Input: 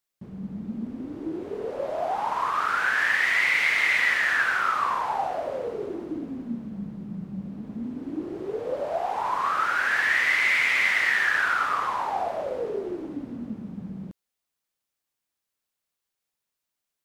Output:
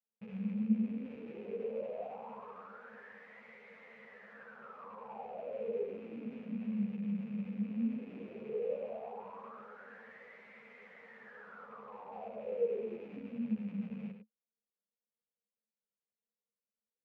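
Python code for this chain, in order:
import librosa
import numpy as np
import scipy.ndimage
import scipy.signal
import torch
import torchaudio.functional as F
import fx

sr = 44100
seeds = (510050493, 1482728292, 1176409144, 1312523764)

p1 = fx.rattle_buzz(x, sr, strikes_db=-45.0, level_db=-20.0)
p2 = fx.rider(p1, sr, range_db=5, speed_s=2.0)
p3 = fx.double_bandpass(p2, sr, hz=320.0, octaves=1.1)
p4 = p3 + fx.echo_single(p3, sr, ms=101, db=-7.5, dry=0)
p5 = fx.ensemble(p4, sr)
y = p5 * librosa.db_to_amplitude(-2.5)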